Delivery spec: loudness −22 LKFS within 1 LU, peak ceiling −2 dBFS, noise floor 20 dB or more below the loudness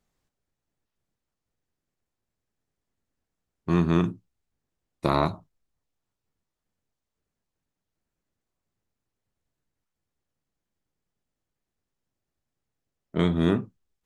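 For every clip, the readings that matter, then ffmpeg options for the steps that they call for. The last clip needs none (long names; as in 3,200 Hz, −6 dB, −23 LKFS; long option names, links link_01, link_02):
integrated loudness −25.5 LKFS; sample peak −6.0 dBFS; target loudness −22.0 LKFS
→ -af "volume=3.5dB"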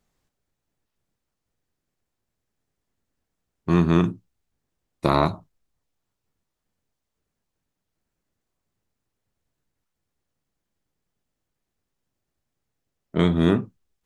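integrated loudness −22.0 LKFS; sample peak −2.5 dBFS; background noise floor −82 dBFS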